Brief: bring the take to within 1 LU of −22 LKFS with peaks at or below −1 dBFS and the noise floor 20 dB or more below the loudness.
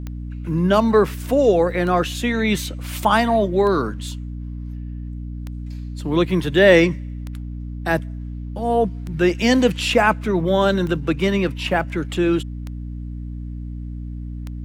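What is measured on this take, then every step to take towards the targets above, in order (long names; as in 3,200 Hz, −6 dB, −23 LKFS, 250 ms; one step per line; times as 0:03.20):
number of clicks 9; mains hum 60 Hz; hum harmonics up to 300 Hz; level of the hum −27 dBFS; integrated loudness −19.0 LKFS; sample peak −2.0 dBFS; target loudness −22.0 LKFS
→ click removal
hum removal 60 Hz, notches 5
level −3 dB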